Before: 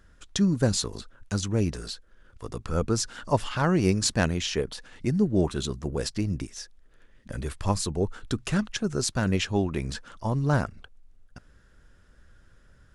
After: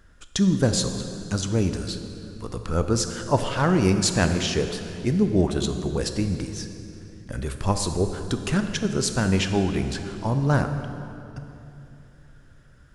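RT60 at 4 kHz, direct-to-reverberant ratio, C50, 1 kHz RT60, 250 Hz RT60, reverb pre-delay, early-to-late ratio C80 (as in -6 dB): 2.2 s, 7.0 dB, 7.5 dB, 2.7 s, 3.6 s, 19 ms, 8.5 dB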